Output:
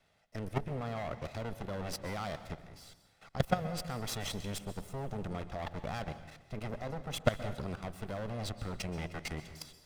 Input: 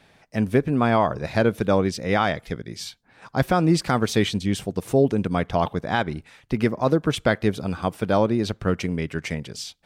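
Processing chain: comb filter that takes the minimum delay 1.5 ms; level held to a coarse grid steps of 17 dB; plate-style reverb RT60 1.1 s, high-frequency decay 0.8×, pre-delay 110 ms, DRR 12 dB; trim -4 dB

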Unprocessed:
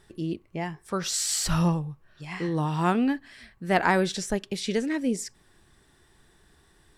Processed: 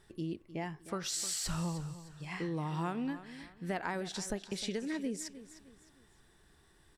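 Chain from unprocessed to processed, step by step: compression 6:1, threshold -28 dBFS, peak gain reduction 11.5 dB; feedback delay 307 ms, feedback 35%, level -14.5 dB; trim -5 dB

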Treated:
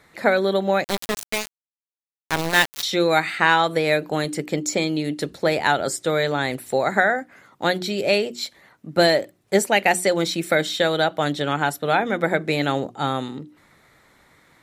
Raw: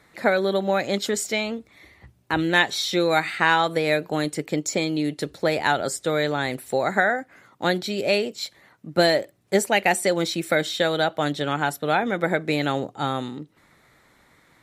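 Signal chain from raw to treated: hum notches 60/120/180/240/300/360 Hz; 0.84–2.83 s: small samples zeroed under -19.5 dBFS; trim +2 dB

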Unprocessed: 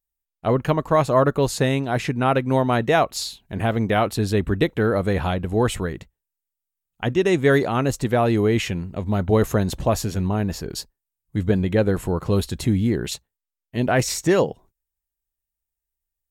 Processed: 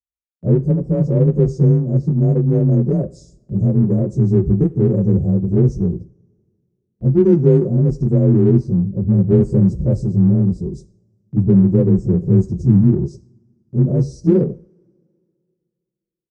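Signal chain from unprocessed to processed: frequency axis rescaled in octaves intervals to 90%; inverse Chebyshev band-stop 1–3.2 kHz, stop band 50 dB; RIAA curve playback; gate with hold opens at -37 dBFS; high-pass 69 Hz 12 dB/octave; treble shelf 9.8 kHz -8.5 dB; comb 5.5 ms, depth 42%; in parallel at -10 dB: saturation -21.5 dBFS, distortion -5 dB; on the sum: two-slope reverb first 0.42 s, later 2.4 s, from -26 dB, DRR 13 dB; trim -1 dB

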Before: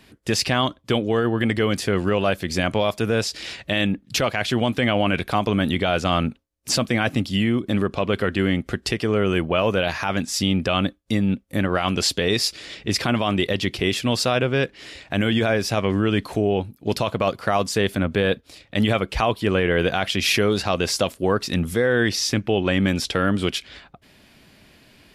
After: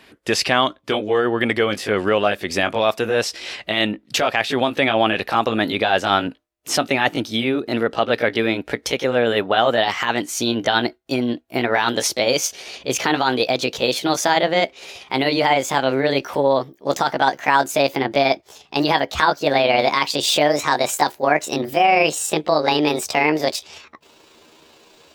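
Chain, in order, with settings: pitch bend over the whole clip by +8 st starting unshifted; tone controls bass -13 dB, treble -6 dB; trim +6 dB

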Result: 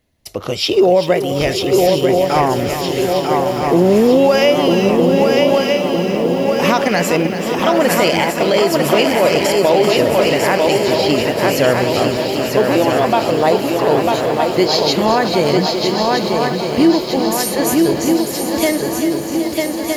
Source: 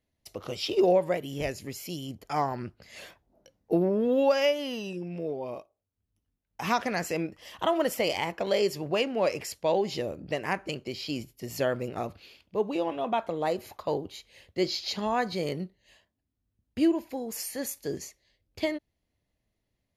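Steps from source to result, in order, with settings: on a send: shuffle delay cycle 1262 ms, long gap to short 3:1, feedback 55%, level -5 dB; on the sum: loudness maximiser +17.5 dB; bit-crushed delay 386 ms, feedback 80%, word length 6-bit, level -10.5 dB; trim -3 dB

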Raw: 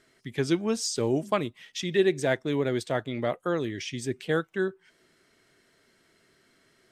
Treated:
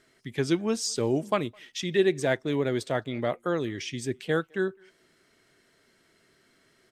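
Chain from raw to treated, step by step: speakerphone echo 210 ms, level -29 dB

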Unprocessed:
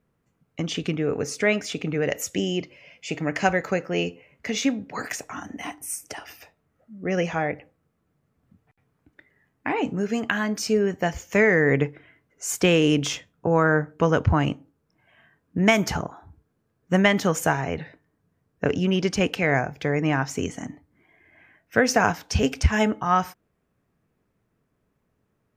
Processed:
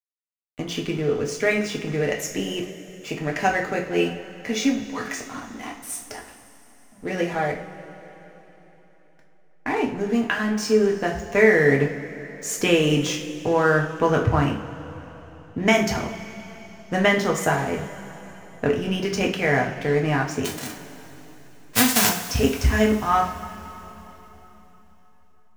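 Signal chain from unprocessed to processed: 20.44–22.08 s: formants flattened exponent 0.1; hysteresis with a dead band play -33.5 dBFS; two-slope reverb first 0.39 s, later 3.9 s, from -18 dB, DRR -0.5 dB; trim -1.5 dB

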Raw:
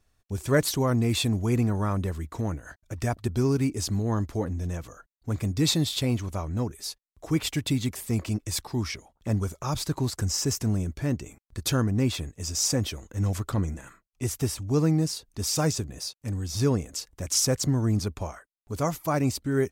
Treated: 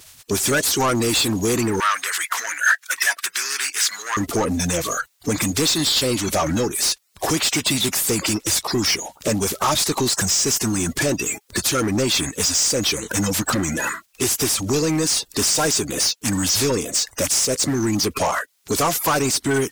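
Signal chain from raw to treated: coarse spectral quantiser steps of 30 dB; treble shelf 3.3 kHz +10 dB; compression 6:1, threshold -32 dBFS, peak gain reduction 17.5 dB; overdrive pedal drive 24 dB, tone 7.2 kHz, clips at -19 dBFS; 1.80–4.17 s: resonant high-pass 1.6 kHz, resonance Q 2.7; trim +8.5 dB

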